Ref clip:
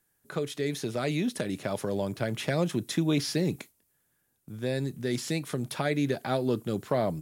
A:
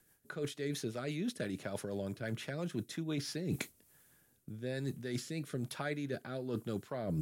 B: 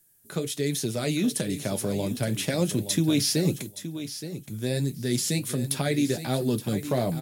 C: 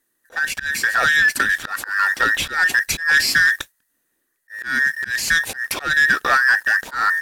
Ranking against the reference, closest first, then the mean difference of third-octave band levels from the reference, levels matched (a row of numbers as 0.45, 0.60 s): A, B, C; 3.0, 5.0, 12.5 dB